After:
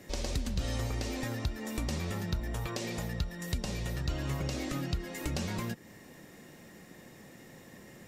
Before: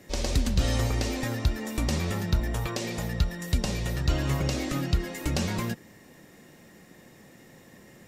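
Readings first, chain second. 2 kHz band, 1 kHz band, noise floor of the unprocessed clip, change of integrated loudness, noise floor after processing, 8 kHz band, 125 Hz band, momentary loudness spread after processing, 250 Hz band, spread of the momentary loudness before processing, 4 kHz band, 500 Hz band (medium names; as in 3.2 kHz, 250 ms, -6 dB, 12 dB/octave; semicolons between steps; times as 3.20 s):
-6.0 dB, -6.0 dB, -53 dBFS, -7.0 dB, -54 dBFS, -6.0 dB, -7.0 dB, 17 LU, -6.0 dB, 4 LU, -6.5 dB, -6.0 dB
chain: compression 2:1, threshold -36 dBFS, peak gain reduction 10 dB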